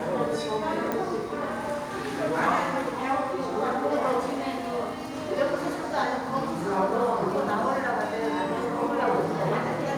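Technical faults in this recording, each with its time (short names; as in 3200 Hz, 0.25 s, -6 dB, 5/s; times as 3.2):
0.92 pop -15 dBFS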